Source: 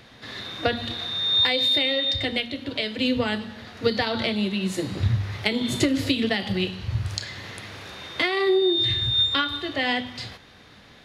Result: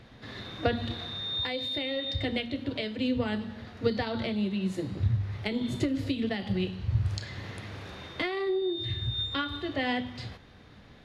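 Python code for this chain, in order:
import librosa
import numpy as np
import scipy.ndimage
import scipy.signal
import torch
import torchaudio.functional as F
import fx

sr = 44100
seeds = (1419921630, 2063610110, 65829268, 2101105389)

y = fx.tilt_eq(x, sr, slope=-2.0)
y = fx.rider(y, sr, range_db=4, speed_s=0.5)
y = F.gain(torch.from_numpy(y), -8.0).numpy()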